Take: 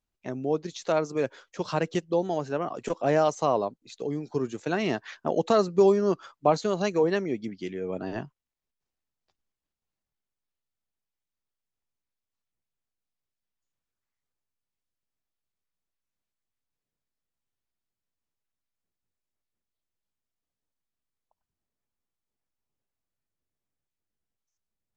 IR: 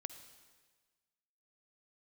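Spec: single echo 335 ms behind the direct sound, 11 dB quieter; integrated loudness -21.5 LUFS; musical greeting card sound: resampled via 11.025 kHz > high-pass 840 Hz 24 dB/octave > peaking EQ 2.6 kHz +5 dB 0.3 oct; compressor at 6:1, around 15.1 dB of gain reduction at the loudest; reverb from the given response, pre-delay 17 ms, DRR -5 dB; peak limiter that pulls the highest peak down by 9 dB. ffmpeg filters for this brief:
-filter_complex "[0:a]acompressor=threshold=0.0251:ratio=6,alimiter=level_in=1.58:limit=0.0631:level=0:latency=1,volume=0.631,aecho=1:1:335:0.282,asplit=2[s0][s1];[1:a]atrim=start_sample=2205,adelay=17[s2];[s1][s2]afir=irnorm=-1:irlink=0,volume=2.66[s3];[s0][s3]amix=inputs=2:normalize=0,aresample=11025,aresample=44100,highpass=f=840:w=0.5412,highpass=f=840:w=1.3066,equalizer=f=2600:t=o:w=0.3:g=5,volume=9.44"

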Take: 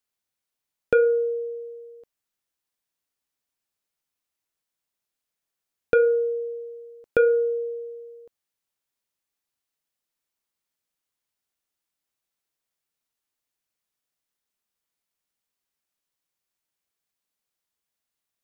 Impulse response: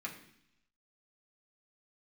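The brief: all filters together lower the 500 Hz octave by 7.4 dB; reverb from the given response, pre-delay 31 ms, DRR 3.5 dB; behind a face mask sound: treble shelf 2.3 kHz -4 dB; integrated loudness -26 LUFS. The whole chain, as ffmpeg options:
-filter_complex "[0:a]equalizer=f=500:t=o:g=-7.5,asplit=2[s0][s1];[1:a]atrim=start_sample=2205,adelay=31[s2];[s1][s2]afir=irnorm=-1:irlink=0,volume=0.631[s3];[s0][s3]amix=inputs=2:normalize=0,highshelf=f=2300:g=-4,volume=1.78"

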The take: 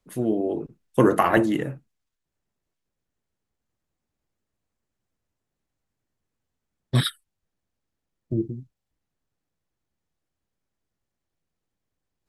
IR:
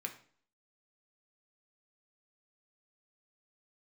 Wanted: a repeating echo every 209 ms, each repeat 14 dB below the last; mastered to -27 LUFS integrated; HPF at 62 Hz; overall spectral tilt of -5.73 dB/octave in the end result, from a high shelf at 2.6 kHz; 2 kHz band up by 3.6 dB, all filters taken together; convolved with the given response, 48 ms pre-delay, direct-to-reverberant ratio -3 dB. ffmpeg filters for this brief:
-filter_complex "[0:a]highpass=62,equalizer=f=2000:t=o:g=7,highshelf=f=2600:g=-6.5,aecho=1:1:209|418:0.2|0.0399,asplit=2[s0][s1];[1:a]atrim=start_sample=2205,adelay=48[s2];[s1][s2]afir=irnorm=-1:irlink=0,volume=1.5[s3];[s0][s3]amix=inputs=2:normalize=0,volume=0.447"

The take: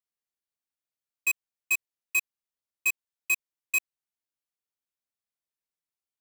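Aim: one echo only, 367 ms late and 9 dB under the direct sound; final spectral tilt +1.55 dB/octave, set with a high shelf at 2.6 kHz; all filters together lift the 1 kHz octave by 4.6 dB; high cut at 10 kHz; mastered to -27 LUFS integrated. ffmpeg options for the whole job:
-af "lowpass=10000,equalizer=f=1000:t=o:g=3.5,highshelf=f=2600:g=8.5,aecho=1:1:367:0.355,volume=0.794"

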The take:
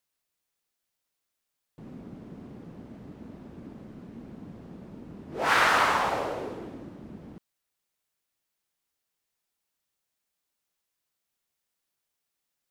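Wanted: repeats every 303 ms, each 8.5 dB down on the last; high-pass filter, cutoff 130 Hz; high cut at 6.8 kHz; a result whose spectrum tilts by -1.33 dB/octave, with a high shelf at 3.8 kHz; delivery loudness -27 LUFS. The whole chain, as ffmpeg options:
-af "highpass=130,lowpass=6800,highshelf=f=3800:g=-3.5,aecho=1:1:303|606|909|1212:0.376|0.143|0.0543|0.0206,volume=0.841"

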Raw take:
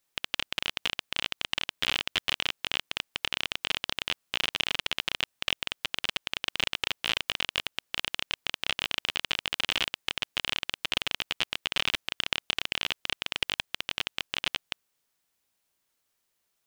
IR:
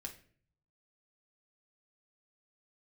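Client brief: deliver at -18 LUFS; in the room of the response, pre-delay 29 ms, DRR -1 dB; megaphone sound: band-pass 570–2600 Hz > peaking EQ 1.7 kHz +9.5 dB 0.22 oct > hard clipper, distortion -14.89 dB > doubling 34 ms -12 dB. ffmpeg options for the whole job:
-filter_complex "[0:a]asplit=2[s0][s1];[1:a]atrim=start_sample=2205,adelay=29[s2];[s1][s2]afir=irnorm=-1:irlink=0,volume=1.68[s3];[s0][s3]amix=inputs=2:normalize=0,highpass=570,lowpass=2600,equalizer=f=1700:t=o:w=0.22:g=9.5,asoftclip=type=hard:threshold=0.141,asplit=2[s4][s5];[s5]adelay=34,volume=0.251[s6];[s4][s6]amix=inputs=2:normalize=0,volume=4.22"

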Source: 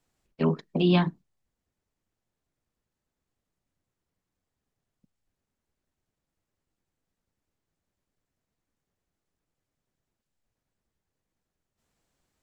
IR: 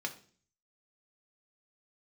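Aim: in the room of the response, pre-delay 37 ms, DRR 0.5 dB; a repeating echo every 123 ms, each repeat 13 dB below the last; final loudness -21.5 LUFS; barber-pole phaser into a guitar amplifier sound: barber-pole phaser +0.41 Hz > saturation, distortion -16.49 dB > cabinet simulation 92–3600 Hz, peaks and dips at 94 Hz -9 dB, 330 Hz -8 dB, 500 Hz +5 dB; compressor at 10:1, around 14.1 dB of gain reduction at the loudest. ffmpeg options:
-filter_complex "[0:a]acompressor=threshold=0.0251:ratio=10,aecho=1:1:123|246|369:0.224|0.0493|0.0108,asplit=2[s0][s1];[1:a]atrim=start_sample=2205,adelay=37[s2];[s1][s2]afir=irnorm=-1:irlink=0,volume=0.708[s3];[s0][s3]amix=inputs=2:normalize=0,asplit=2[s4][s5];[s5]afreqshift=0.41[s6];[s4][s6]amix=inputs=2:normalize=1,asoftclip=threshold=0.0335,highpass=92,equalizer=f=94:t=q:w=4:g=-9,equalizer=f=330:t=q:w=4:g=-8,equalizer=f=500:t=q:w=4:g=5,lowpass=f=3600:w=0.5412,lowpass=f=3600:w=1.3066,volume=10"

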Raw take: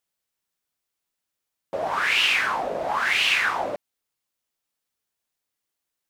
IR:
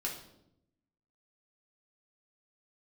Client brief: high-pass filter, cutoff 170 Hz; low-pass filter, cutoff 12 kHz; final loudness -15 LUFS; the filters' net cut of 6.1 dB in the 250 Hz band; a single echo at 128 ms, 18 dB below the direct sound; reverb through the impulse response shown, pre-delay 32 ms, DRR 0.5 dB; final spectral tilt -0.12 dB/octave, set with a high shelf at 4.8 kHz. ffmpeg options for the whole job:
-filter_complex "[0:a]highpass=170,lowpass=12000,equalizer=f=250:t=o:g=-7.5,highshelf=f=4800:g=-6,aecho=1:1:128:0.126,asplit=2[s0][s1];[1:a]atrim=start_sample=2205,adelay=32[s2];[s1][s2]afir=irnorm=-1:irlink=0,volume=0.75[s3];[s0][s3]amix=inputs=2:normalize=0,volume=1.88"

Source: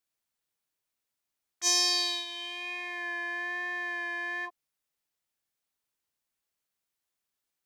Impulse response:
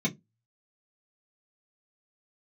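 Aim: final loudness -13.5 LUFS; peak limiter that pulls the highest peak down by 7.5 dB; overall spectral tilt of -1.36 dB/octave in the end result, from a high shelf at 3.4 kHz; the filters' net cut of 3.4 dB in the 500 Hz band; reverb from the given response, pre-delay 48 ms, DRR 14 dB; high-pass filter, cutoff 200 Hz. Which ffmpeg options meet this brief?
-filter_complex "[0:a]highpass=200,equalizer=f=500:t=o:g=-6,highshelf=f=3400:g=-8,alimiter=level_in=1.06:limit=0.0631:level=0:latency=1,volume=0.944,asplit=2[s0][s1];[1:a]atrim=start_sample=2205,adelay=48[s2];[s1][s2]afir=irnorm=-1:irlink=0,volume=0.0891[s3];[s0][s3]amix=inputs=2:normalize=0,volume=12.6"

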